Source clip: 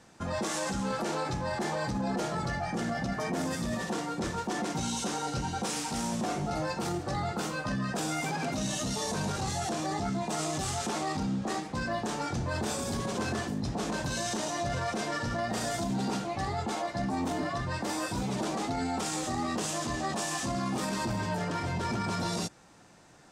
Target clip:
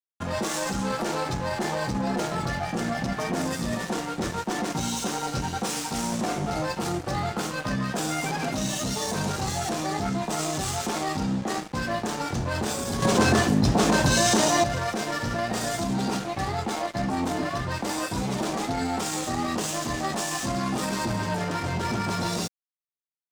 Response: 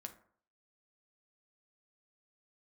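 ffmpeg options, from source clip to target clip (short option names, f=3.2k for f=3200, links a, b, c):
-filter_complex "[0:a]asettb=1/sr,asplit=3[a][b][c];[a]atrim=end=13.024[d];[b]atrim=start=13.02:end=14.64,asetpts=PTS-STARTPTS,afade=t=in:d=0.004:c=qsin,afade=t=out:st=1.616:d=0.004:c=qsin,acontrast=73[e];[c]atrim=start=14.636[f];[d][e]acrossfade=d=0.004:c1=hsin:c2=qsin[g];[g][f]acrossfade=d=0.004:c1=qsin:c2=hsin,aeval=exprs='sgn(val(0))*max(abs(val(0))-0.00841,0)':c=same,volume=6.5dB"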